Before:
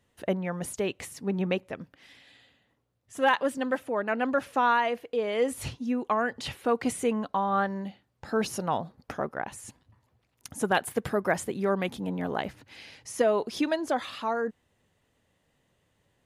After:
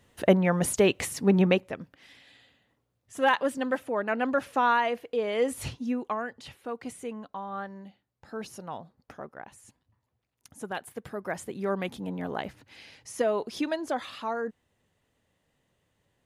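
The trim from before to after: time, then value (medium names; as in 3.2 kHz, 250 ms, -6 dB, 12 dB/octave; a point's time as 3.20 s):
1.37 s +8 dB
1.80 s 0 dB
5.87 s 0 dB
6.44 s -10 dB
11.06 s -10 dB
11.71 s -2.5 dB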